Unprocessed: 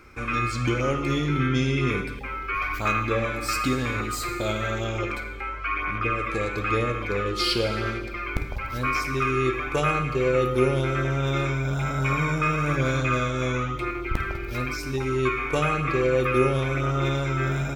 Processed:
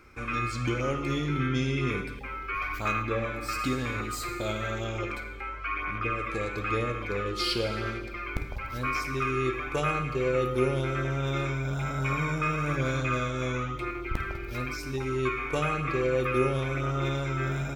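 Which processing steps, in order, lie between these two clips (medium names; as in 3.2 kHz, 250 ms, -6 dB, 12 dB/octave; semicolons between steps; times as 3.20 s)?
3.02–3.59 s: peaking EQ 8.2 kHz -5 dB 2.3 oct; trim -4.5 dB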